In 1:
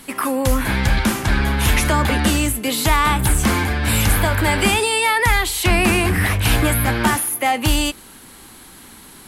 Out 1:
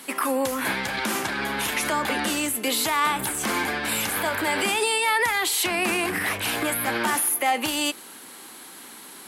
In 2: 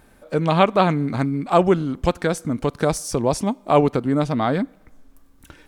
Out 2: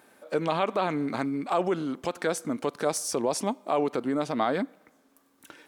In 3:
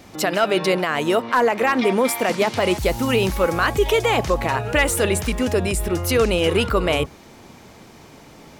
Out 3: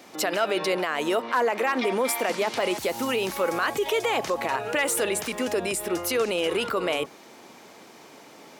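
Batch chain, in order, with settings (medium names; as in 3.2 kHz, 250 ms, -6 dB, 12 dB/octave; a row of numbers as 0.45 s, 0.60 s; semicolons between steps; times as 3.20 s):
peak limiter -13.5 dBFS; high-pass 300 Hz 12 dB/octave; peak normalisation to -12 dBFS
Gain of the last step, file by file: 0.0 dB, -1.5 dB, -1.5 dB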